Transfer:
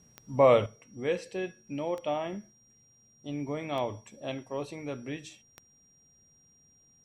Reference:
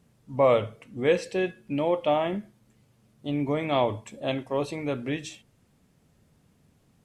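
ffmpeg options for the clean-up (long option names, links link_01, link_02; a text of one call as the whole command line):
ffmpeg -i in.wav -af "adeclick=threshold=4,bandreject=frequency=5700:width=30,asetnsamples=nb_out_samples=441:pad=0,asendcmd='0.66 volume volume 7.5dB',volume=0dB" out.wav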